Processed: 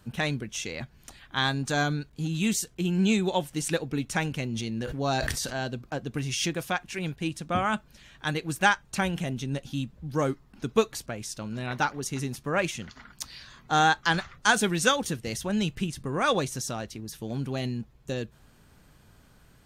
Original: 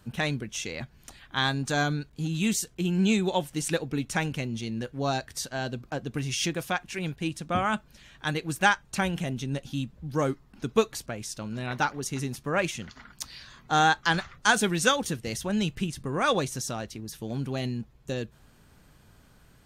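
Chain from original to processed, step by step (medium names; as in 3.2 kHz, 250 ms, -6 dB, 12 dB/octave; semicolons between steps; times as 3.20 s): 4.42–5.64 s: decay stretcher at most 22 dB/s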